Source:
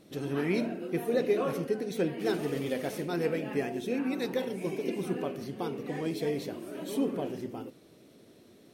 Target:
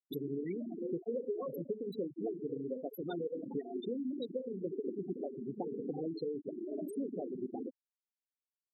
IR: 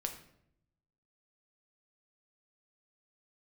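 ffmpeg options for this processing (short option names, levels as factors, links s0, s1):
-af "crystalizer=i=3:c=0,acompressor=threshold=0.01:ratio=12,afftfilt=real='re*gte(hypot(re,im),0.0251)':imag='im*gte(hypot(re,im),0.0251)':win_size=1024:overlap=0.75,highpass=160,volume=2.24"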